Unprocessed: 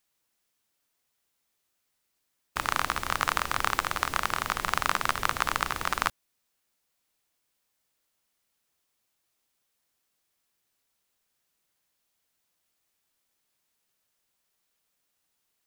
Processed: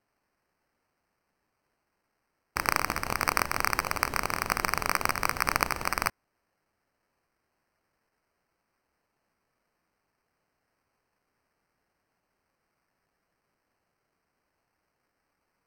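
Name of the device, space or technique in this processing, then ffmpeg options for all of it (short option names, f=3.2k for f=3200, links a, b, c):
crushed at another speed: -af "asetrate=55125,aresample=44100,acrusher=samples=10:mix=1:aa=0.000001,asetrate=35280,aresample=44100"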